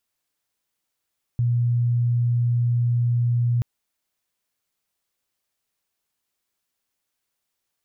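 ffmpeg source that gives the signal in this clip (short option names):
-f lavfi -i "aevalsrc='0.133*sin(2*PI*120*t)':d=2.23:s=44100"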